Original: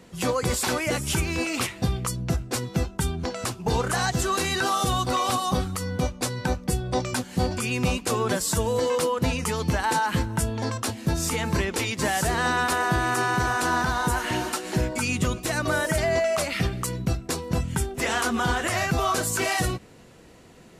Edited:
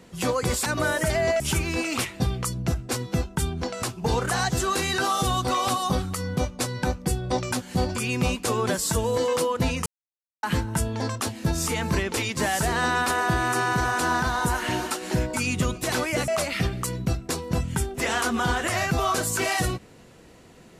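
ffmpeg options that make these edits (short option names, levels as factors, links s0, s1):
-filter_complex "[0:a]asplit=7[s0][s1][s2][s3][s4][s5][s6];[s0]atrim=end=0.662[s7];[s1]atrim=start=15.538:end=16.282[s8];[s2]atrim=start=1.018:end=9.48,asetpts=PTS-STARTPTS,afade=t=out:st=8.458:d=0.004:c=hsin[s9];[s3]atrim=start=9.48:end=10.05,asetpts=PTS-STARTPTS,volume=0[s10];[s4]atrim=start=10.05:end=15.542,asetpts=PTS-STARTPTS,afade=t=in:d=0.004:c=hsin[s11];[s5]atrim=start=0.658:end=1.022[s12];[s6]atrim=start=16.278[s13];[s7][s8]acrossfade=d=0.004:c1=hsin:c2=hsin[s14];[s9][s10][s11]concat=n=3:v=0:a=1[s15];[s14][s15]acrossfade=d=0.004:c1=hsin:c2=hsin[s16];[s16][s12]acrossfade=d=0.004:c1=hsin:c2=hsin[s17];[s17][s13]acrossfade=d=0.004:c1=hsin:c2=hsin"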